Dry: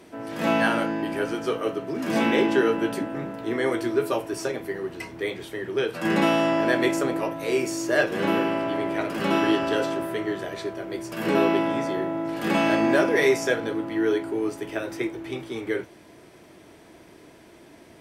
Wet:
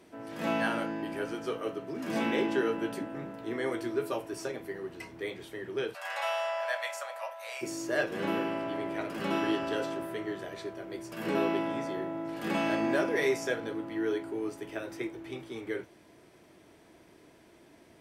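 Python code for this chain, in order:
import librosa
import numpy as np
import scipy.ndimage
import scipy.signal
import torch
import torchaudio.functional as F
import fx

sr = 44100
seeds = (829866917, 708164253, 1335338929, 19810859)

y = fx.steep_highpass(x, sr, hz=570.0, slope=72, at=(5.93, 7.61), fade=0.02)
y = F.gain(torch.from_numpy(y), -8.0).numpy()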